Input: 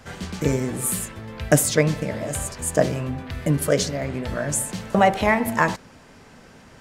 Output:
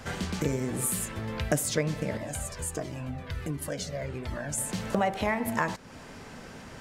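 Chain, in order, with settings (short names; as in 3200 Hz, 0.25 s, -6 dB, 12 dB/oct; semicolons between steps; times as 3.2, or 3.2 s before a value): compressor 2.5:1, threshold -33 dBFS, peak gain reduction 15 dB; 2.17–4.58 cascading flanger falling 1.4 Hz; gain +3 dB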